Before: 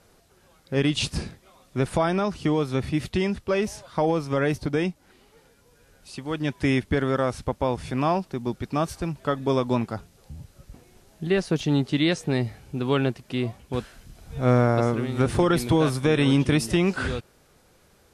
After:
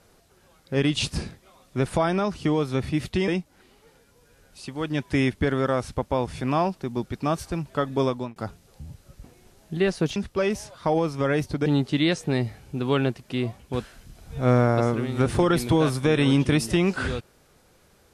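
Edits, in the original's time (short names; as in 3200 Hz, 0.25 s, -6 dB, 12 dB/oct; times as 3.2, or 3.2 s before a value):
3.28–4.78 move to 11.66
9.54–9.86 fade out linear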